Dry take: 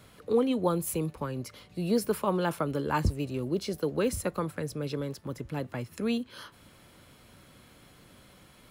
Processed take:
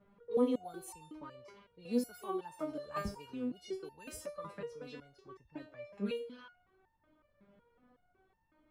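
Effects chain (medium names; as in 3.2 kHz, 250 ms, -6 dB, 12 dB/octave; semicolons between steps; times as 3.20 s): repeats whose band climbs or falls 115 ms, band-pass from 510 Hz, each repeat 0.7 oct, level -11 dB; level-controlled noise filter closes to 1.1 kHz, open at -24 dBFS; resonator arpeggio 5.4 Hz 200–900 Hz; trim +4.5 dB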